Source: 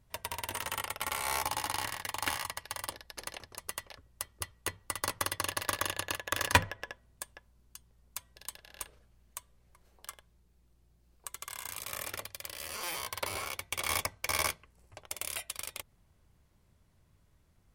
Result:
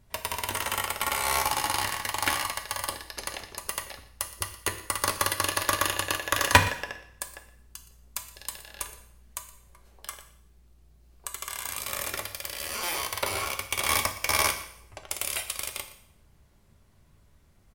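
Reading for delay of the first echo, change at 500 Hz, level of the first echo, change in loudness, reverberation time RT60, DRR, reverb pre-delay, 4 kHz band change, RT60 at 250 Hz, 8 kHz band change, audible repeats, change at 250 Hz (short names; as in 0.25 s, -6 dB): 0.119 s, +7.0 dB, -18.0 dB, +7.0 dB, 0.65 s, 5.5 dB, 3 ms, +7.0 dB, 0.55 s, +7.0 dB, 1, +7.0 dB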